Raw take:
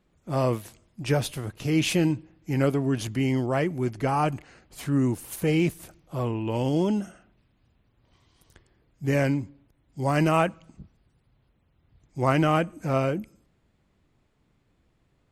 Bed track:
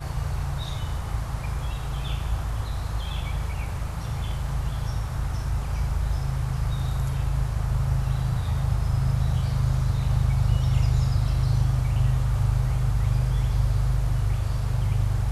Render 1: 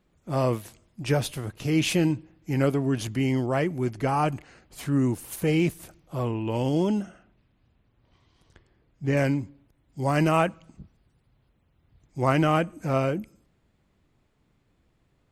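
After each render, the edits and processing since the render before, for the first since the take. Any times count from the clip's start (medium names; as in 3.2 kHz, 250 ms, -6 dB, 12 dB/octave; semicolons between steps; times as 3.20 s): 7.02–9.17 s: distance through air 79 m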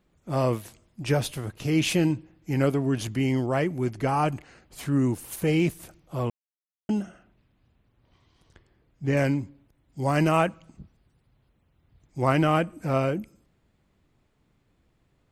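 6.30–6.89 s: mute; 12.22–13.12 s: band-stop 6.5 kHz, Q 8.1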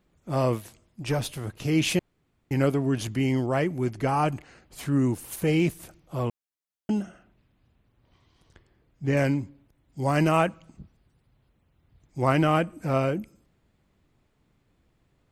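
0.60–1.41 s: valve stage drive 16 dB, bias 0.4; 1.99–2.51 s: room tone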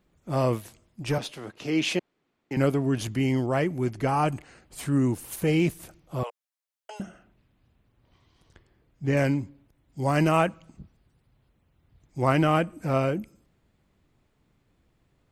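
1.18–2.57 s: three-band isolator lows -18 dB, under 200 Hz, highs -13 dB, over 6.8 kHz; 4.27–4.99 s: peaking EQ 8.5 kHz +6.5 dB 0.33 oct; 6.23–7.00 s: steep high-pass 510 Hz 48 dB/octave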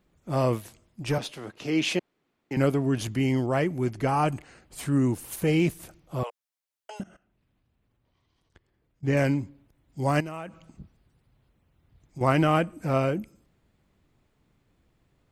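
7.01–9.04 s: level held to a coarse grid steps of 18 dB; 10.20–12.21 s: compression 4:1, threshold -35 dBFS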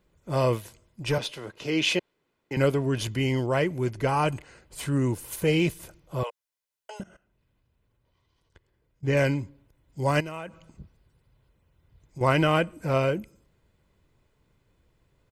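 comb 2 ms, depth 35%; dynamic bell 3.2 kHz, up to +4 dB, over -44 dBFS, Q 1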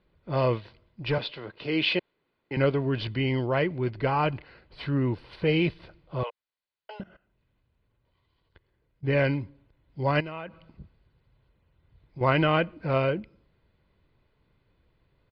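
elliptic low-pass 4.5 kHz, stop band 40 dB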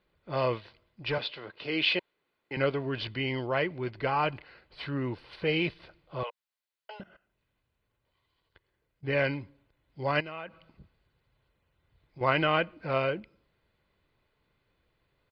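bass shelf 400 Hz -9 dB; band-stop 960 Hz, Q 28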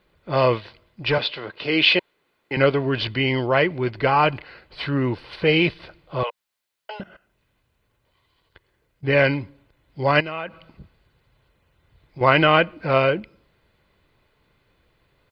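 trim +10 dB; peak limiter -1 dBFS, peak gain reduction 1 dB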